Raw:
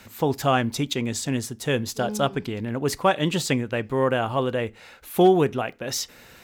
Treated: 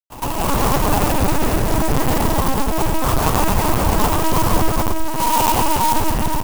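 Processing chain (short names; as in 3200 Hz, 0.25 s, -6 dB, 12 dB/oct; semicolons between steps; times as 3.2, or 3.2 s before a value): four-band scrambler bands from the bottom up 2143; low shelf 72 Hz +11 dB; comb 5 ms, depth 95%; dynamic EQ 3100 Hz, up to -4 dB, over -29 dBFS, Q 1.5; in parallel at -1.5 dB: negative-ratio compressor -30 dBFS, ratio -1; on the sum: pitch shift -11.5 st; Schmitt trigger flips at -14.5 dBFS; pre-echo 0.109 s -13.5 dB; digital reverb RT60 4.6 s, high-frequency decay 0.75×, pre-delay 60 ms, DRR -7 dB; LPC vocoder at 8 kHz pitch kept; clock jitter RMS 0.071 ms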